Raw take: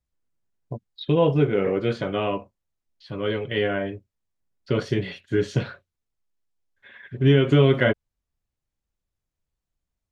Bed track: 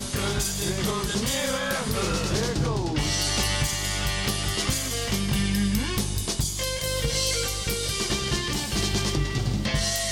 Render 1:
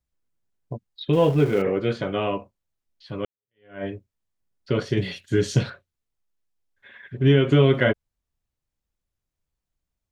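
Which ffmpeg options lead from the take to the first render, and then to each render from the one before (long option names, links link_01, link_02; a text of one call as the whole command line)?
ffmpeg -i in.wav -filter_complex "[0:a]asettb=1/sr,asplit=3[link_01][link_02][link_03];[link_01]atrim=end=1.134[link_04];[link_02]atrim=start=1.13:end=1.62,asetpts=PTS-STARTPTS,afade=type=in:duration=0.004:curve=qsin,afade=type=out:start_time=0.486:duration=0.004:curve=qsin,aeval=exprs='val(0)+0.5*0.02*sgn(val(0))':channel_layout=same[link_05];[link_03]atrim=start=1.616[link_06];[link_04][link_05]acrossfade=duration=0.004:curve1=hsin:curve2=qsin[link_07];[link_07][link_06]acrossfade=duration=0.004:curve1=qsin:curve2=hsin,asettb=1/sr,asplit=3[link_08][link_09][link_10];[link_08]atrim=end=4.974[link_11];[link_09]atrim=start=4.97:end=5.7,asetpts=PTS-STARTPTS,afade=type=in:duration=0.004:curve=qsin,afade=type=out:start_time=0.726:duration=0.004:curve=qsin,bass=frequency=250:gain=4,treble=frequency=4000:gain=12[link_12];[link_10]atrim=start=5.696[link_13];[link_11][link_12]acrossfade=duration=0.004:curve1=hsin:curve2=qsin[link_14];[link_14][link_13]acrossfade=duration=0.004:curve1=qsin:curve2=hsin,asplit=2[link_15][link_16];[link_15]atrim=end=3.25,asetpts=PTS-STARTPTS,afade=type=out:start_time=3.246:duration=0.004:curve=hsin[link_17];[link_16]atrim=start=3.25,asetpts=PTS-STARTPTS,afade=type=in:duration=0.59:curve=exp[link_18];[link_17][link_18]concat=n=2:v=0:a=1" out.wav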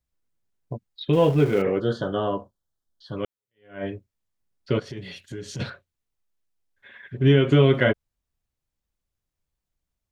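ffmpeg -i in.wav -filter_complex "[0:a]asettb=1/sr,asplit=3[link_01][link_02][link_03];[link_01]atrim=end=1.804[link_04];[link_02]atrim=start=1.8:end=3.17,asetpts=PTS-STARTPTS,afade=type=in:duration=0.004:curve=qsin,afade=type=out:start_time=1.366:duration=0.004:curve=qsin,asuperstop=centerf=2300:order=8:qfactor=1.8[link_05];[link_03]atrim=start=3.166[link_06];[link_04][link_05]acrossfade=duration=0.004:curve1=hsin:curve2=qsin[link_07];[link_07][link_06]acrossfade=duration=0.004:curve1=qsin:curve2=hsin,asplit=3[link_08][link_09][link_10];[link_08]afade=type=out:start_time=4.78:duration=0.02[link_11];[link_09]acompressor=threshold=-36dB:ratio=3:attack=3.2:release=140:knee=1:detection=peak,afade=type=in:start_time=4.78:duration=0.02,afade=type=out:start_time=5.59:duration=0.02[link_12];[link_10]afade=type=in:start_time=5.59:duration=0.02[link_13];[link_11][link_12][link_13]amix=inputs=3:normalize=0" out.wav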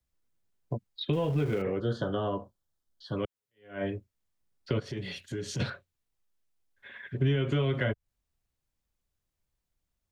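ffmpeg -i in.wav -filter_complex "[0:a]acrossover=split=510|970[link_01][link_02][link_03];[link_01]alimiter=limit=-16dB:level=0:latency=1[link_04];[link_04][link_02][link_03]amix=inputs=3:normalize=0,acrossover=split=130[link_05][link_06];[link_06]acompressor=threshold=-28dB:ratio=6[link_07];[link_05][link_07]amix=inputs=2:normalize=0" out.wav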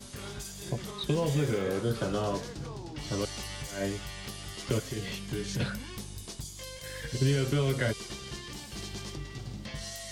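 ffmpeg -i in.wav -i bed.wav -filter_complex "[1:a]volume=-14.5dB[link_01];[0:a][link_01]amix=inputs=2:normalize=0" out.wav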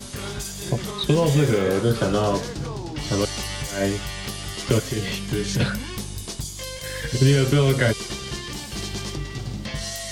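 ffmpeg -i in.wav -af "volume=9.5dB" out.wav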